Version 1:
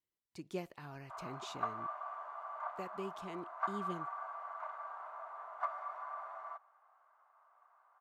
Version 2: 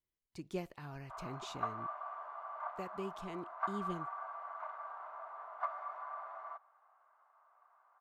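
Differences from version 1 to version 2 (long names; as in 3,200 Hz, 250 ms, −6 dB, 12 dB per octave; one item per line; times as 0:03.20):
background: add high-frequency loss of the air 87 metres
master: remove high-pass filter 150 Hz 6 dB per octave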